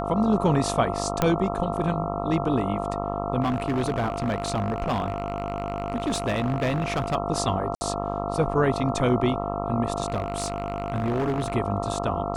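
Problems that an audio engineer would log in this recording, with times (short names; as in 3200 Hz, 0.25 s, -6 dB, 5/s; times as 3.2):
buzz 50 Hz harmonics 27 -30 dBFS
tone 690 Hz -31 dBFS
1.22 pop -7 dBFS
3.41–7.16 clipped -20.5 dBFS
7.75–7.81 gap 60 ms
10.08–11.56 clipped -21 dBFS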